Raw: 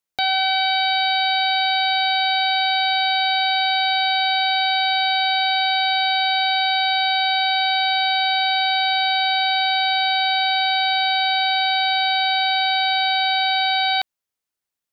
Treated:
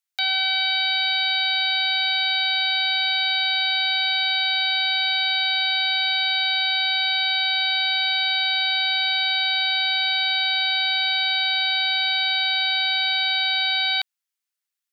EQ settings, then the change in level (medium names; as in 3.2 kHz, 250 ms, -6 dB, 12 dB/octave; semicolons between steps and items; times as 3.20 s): high-pass 1.4 kHz 12 dB/octave; 0.0 dB